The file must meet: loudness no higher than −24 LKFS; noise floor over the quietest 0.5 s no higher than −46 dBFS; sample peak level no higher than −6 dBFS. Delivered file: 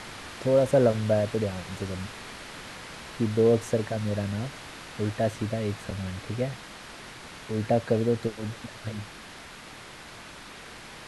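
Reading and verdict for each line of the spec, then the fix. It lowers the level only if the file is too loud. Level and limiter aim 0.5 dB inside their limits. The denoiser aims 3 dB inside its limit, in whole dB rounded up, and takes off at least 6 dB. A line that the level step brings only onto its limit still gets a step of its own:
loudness −28.0 LKFS: in spec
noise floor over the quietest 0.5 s −45 dBFS: out of spec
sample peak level −10.0 dBFS: in spec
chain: broadband denoise 6 dB, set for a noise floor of −45 dBFS

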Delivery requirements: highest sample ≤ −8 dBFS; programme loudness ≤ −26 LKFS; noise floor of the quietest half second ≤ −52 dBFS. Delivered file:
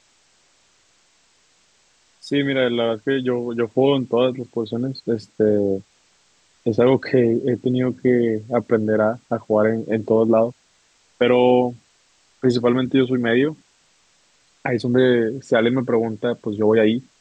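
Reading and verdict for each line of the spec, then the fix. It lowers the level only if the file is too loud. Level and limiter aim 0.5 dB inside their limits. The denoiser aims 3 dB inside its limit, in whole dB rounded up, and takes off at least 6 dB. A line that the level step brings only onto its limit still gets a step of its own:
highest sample −5.5 dBFS: out of spec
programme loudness −20.0 LKFS: out of spec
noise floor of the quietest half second −60 dBFS: in spec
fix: level −6.5 dB

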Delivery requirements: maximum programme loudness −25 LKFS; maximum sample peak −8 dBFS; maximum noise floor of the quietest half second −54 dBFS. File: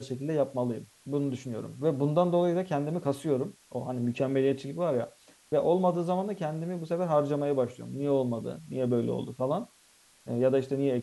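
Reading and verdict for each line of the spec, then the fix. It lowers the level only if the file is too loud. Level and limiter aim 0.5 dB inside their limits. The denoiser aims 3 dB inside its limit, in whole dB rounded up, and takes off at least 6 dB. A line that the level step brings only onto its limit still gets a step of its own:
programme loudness −29.5 LKFS: in spec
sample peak −12.0 dBFS: in spec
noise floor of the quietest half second −61 dBFS: in spec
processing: no processing needed

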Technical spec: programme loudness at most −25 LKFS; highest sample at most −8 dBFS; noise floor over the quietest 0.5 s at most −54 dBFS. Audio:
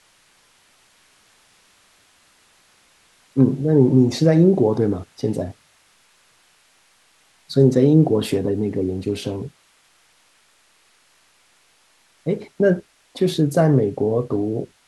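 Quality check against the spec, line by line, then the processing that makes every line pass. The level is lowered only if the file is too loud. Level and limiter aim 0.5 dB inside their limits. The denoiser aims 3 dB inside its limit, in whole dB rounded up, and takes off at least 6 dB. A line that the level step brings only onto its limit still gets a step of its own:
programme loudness −19.0 LKFS: out of spec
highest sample −4.0 dBFS: out of spec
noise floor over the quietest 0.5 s −58 dBFS: in spec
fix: level −6.5 dB

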